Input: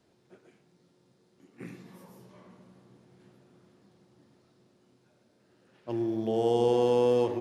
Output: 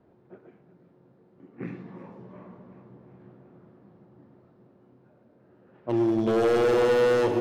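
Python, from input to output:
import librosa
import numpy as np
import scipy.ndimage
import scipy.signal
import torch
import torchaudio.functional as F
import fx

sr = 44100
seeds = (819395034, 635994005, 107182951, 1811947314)

y = fx.env_lowpass(x, sr, base_hz=1200.0, full_db=-25.0)
y = np.clip(y, -10.0 ** (-26.5 / 20.0), 10.0 ** (-26.5 / 20.0))
y = fx.echo_feedback(y, sr, ms=365, feedback_pct=56, wet_db=-14)
y = F.gain(torch.from_numpy(y), 7.5).numpy()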